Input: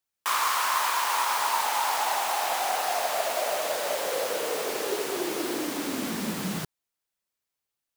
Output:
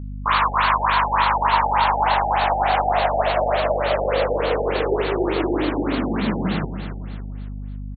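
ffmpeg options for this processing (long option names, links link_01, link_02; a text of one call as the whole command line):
ffmpeg -i in.wav -af "aecho=1:1:279|558|837|1116|1395:0.316|0.136|0.0585|0.0251|0.0108,aeval=exprs='val(0)+0.0126*(sin(2*PI*50*n/s)+sin(2*PI*2*50*n/s)/2+sin(2*PI*3*50*n/s)/3+sin(2*PI*4*50*n/s)/4+sin(2*PI*5*50*n/s)/5)':channel_layout=same,afftfilt=real='re*lt(b*sr/1024,850*pow(4600/850,0.5+0.5*sin(2*PI*3.4*pts/sr)))':imag='im*lt(b*sr/1024,850*pow(4600/850,0.5+0.5*sin(2*PI*3.4*pts/sr)))':win_size=1024:overlap=0.75,volume=8.5dB" out.wav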